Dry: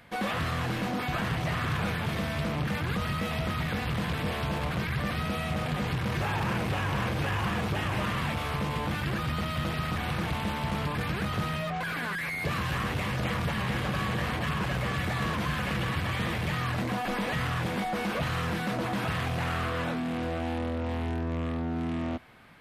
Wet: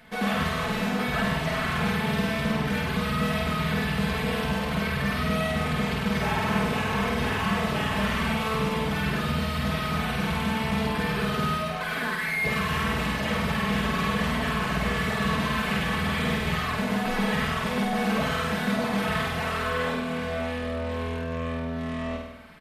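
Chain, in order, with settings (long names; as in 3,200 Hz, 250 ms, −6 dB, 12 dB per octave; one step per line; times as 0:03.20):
comb filter 4.6 ms, depth 79%
on a send: flutter between parallel walls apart 8.6 metres, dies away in 0.86 s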